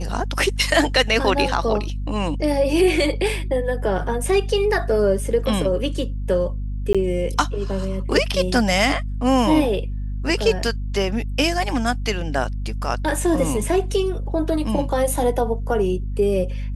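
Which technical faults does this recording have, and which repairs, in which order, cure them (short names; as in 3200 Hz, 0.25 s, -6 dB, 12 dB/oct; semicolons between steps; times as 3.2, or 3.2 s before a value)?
hum 50 Hz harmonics 5 -26 dBFS
6.93–6.95 gap 16 ms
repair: de-hum 50 Hz, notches 5; interpolate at 6.93, 16 ms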